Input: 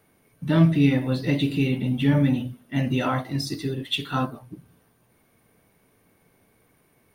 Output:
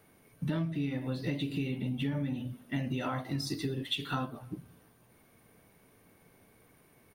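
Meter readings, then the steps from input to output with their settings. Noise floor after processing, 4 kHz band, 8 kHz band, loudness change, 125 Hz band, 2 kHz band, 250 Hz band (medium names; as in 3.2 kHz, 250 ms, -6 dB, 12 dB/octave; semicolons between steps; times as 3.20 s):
-64 dBFS, -7.5 dB, -6.0 dB, -11.5 dB, -11.5 dB, -10.0 dB, -11.5 dB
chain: compression 10:1, threshold -30 dBFS, peak gain reduction 17.5 dB; speakerphone echo 310 ms, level -28 dB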